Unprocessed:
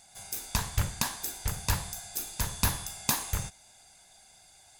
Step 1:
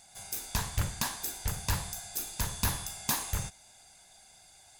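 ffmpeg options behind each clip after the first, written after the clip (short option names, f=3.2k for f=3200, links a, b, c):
-af "asoftclip=type=tanh:threshold=-20dB"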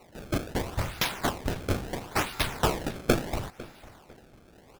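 -filter_complex "[0:a]aexciter=amount=3.1:drive=5.8:freq=9.6k,acrusher=samples=26:mix=1:aa=0.000001:lfo=1:lforange=41.6:lforate=0.74,asplit=2[a][b];[b]adelay=501,lowpass=f=4.7k:p=1,volume=-19dB,asplit=2[c][d];[d]adelay=501,lowpass=f=4.7k:p=1,volume=0.29[e];[a][c][e]amix=inputs=3:normalize=0"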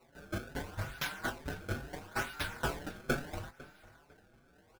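-filter_complex "[0:a]equalizer=f=1.5k:t=o:w=0.2:g=12,asplit=2[a][b];[b]adelay=21,volume=-11dB[c];[a][c]amix=inputs=2:normalize=0,asplit=2[d][e];[e]adelay=5.7,afreqshift=2.3[f];[d][f]amix=inputs=2:normalize=1,volume=-7.5dB"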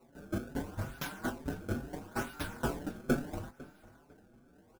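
-af "equalizer=f=250:t=o:w=1:g=8,equalizer=f=2k:t=o:w=1:g=-6,equalizer=f=4k:t=o:w=1:g=-5"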